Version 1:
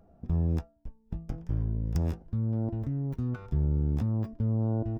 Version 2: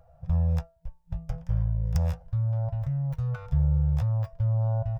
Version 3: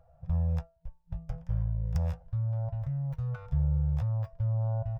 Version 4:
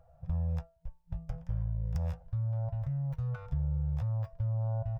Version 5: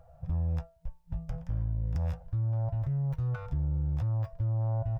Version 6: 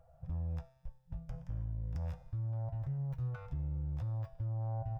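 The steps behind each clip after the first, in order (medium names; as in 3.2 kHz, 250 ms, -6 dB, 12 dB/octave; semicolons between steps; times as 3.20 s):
FFT band-reject 170–480 Hz; trim +4 dB
treble shelf 4.2 kHz -6.5 dB; trim -4 dB
compression 2.5:1, threshold -30 dBFS, peak gain reduction 5 dB
in parallel at -2 dB: peak limiter -31 dBFS, peak gain reduction 8 dB; on the sum: saturation -22 dBFS, distortion -24 dB
feedback comb 130 Hz, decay 1.3 s, harmonics all, mix 70%; trim +2.5 dB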